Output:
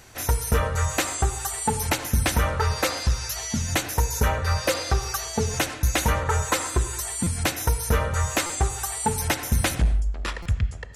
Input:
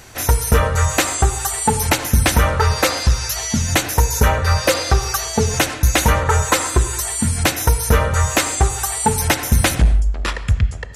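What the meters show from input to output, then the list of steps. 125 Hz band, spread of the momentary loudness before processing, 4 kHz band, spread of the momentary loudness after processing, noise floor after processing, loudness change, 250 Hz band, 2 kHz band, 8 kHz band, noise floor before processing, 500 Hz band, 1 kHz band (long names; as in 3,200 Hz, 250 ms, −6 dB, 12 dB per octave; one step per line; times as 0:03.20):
−7.5 dB, 4 LU, −7.5 dB, 4 LU, −35 dBFS, −7.5 dB, −7.5 dB, −7.5 dB, −7.5 dB, −28 dBFS, −7.5 dB, −7.5 dB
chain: buffer that repeats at 0:07.23/0:08.46/0:10.42, samples 256, times 5
level −7.5 dB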